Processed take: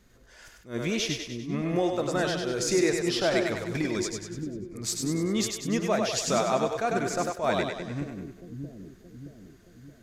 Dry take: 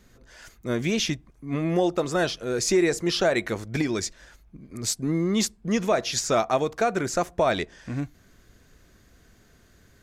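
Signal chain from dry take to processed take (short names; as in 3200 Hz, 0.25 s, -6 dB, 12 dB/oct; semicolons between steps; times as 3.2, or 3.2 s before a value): split-band echo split 350 Hz, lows 0.623 s, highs 98 ms, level -4 dB; attack slew limiter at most 210 dB/s; gain -4 dB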